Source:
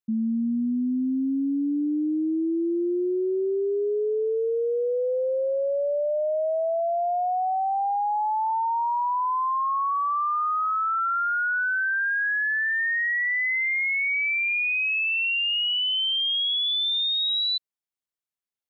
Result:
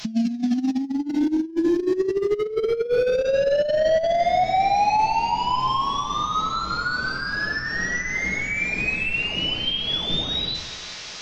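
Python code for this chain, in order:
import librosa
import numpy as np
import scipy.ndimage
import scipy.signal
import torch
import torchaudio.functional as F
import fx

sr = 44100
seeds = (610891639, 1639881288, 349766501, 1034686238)

p1 = fx.delta_mod(x, sr, bps=32000, step_db=-47.5)
p2 = fx.dynamic_eq(p1, sr, hz=1400.0, q=0.99, threshold_db=-51.0, ratio=4.0, max_db=-7)
p3 = np.clip(10.0 ** (26.0 / 20.0) * p2, -1.0, 1.0) / 10.0 ** (26.0 / 20.0)
p4 = p2 + F.gain(torch.from_numpy(p3), -7.0).numpy()
p5 = fx.high_shelf(p4, sr, hz=3100.0, db=9.0)
p6 = fx.hum_notches(p5, sr, base_hz=50, count=8)
p7 = p6 + fx.echo_banded(p6, sr, ms=596, feedback_pct=61, hz=1400.0, wet_db=-10.0, dry=0)
p8 = fx.room_shoebox(p7, sr, seeds[0], volume_m3=430.0, walls='mixed', distance_m=1.4)
p9 = fx.over_compress(p8, sr, threshold_db=-25.0, ratio=-0.5)
p10 = fx.stretch_vocoder(p9, sr, factor=0.6)
y = F.gain(torch.from_numpy(p10), 5.5).numpy()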